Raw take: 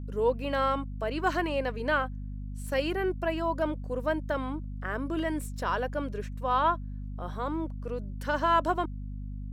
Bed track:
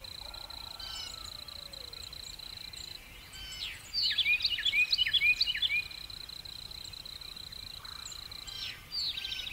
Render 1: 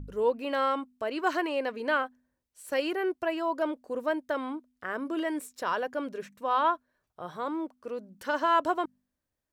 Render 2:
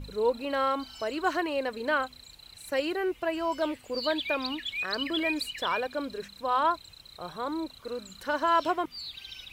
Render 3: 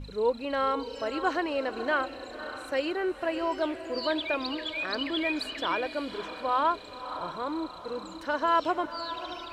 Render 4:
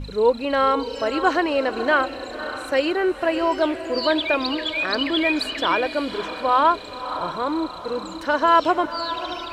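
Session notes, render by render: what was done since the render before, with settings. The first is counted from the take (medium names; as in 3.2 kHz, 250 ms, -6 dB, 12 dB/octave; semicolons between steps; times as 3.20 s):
de-hum 50 Hz, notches 5
add bed track -6 dB
distance through air 53 m; echo that smears into a reverb 562 ms, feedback 45%, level -11 dB
trim +8.5 dB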